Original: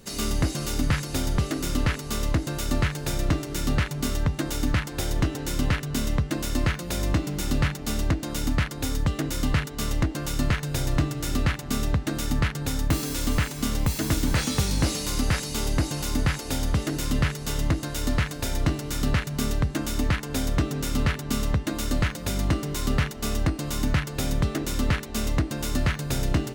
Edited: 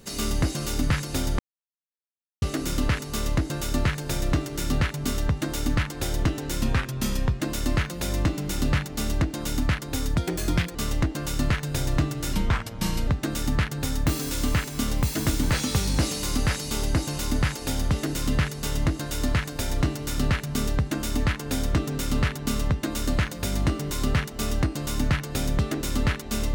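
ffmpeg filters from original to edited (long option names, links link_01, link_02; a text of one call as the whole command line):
ffmpeg -i in.wav -filter_complex "[0:a]asplit=8[link_01][link_02][link_03][link_04][link_05][link_06][link_07][link_08];[link_01]atrim=end=1.39,asetpts=PTS-STARTPTS,afade=type=out:start_time=1.386:duration=0.004:curve=hsin,apad=pad_dur=1.03[link_09];[link_02]atrim=start=1.39:end=5.594,asetpts=PTS-STARTPTS,afade=type=in:duration=0.004:curve=hsin[link_10];[link_03]atrim=start=5.59:end=6.29,asetpts=PTS-STARTPTS,asetrate=39690,aresample=44100[link_11];[link_04]atrim=start=6.286:end=9.054[link_12];[link_05]atrim=start=9.05:end=9.75,asetpts=PTS-STARTPTS,asetrate=52038,aresample=44100,atrim=end_sample=26161,asetpts=PTS-STARTPTS[link_13];[link_06]atrim=start=9.746:end=11.334[link_14];[link_07]atrim=start=11.33:end=11.91,asetpts=PTS-STARTPTS,asetrate=34398,aresample=44100,atrim=end_sample=32792,asetpts=PTS-STARTPTS[link_15];[link_08]atrim=start=11.906[link_16];[link_09][link_10]concat=n=2:v=0:a=1[link_17];[link_17][link_11]acrossfade=duration=0.004:curve1=hsin:curve2=hsin[link_18];[link_18][link_12]acrossfade=duration=0.004:curve1=hsin:curve2=hsin[link_19];[link_19][link_13]acrossfade=duration=0.004:curve1=hsin:curve2=hsin[link_20];[link_20][link_14]acrossfade=duration=0.004:curve1=hsin:curve2=hsin[link_21];[link_21][link_15]acrossfade=duration=0.004:curve1=hsin:curve2=hsin[link_22];[link_22][link_16]acrossfade=duration=0.004:curve1=hsin:curve2=hsin" out.wav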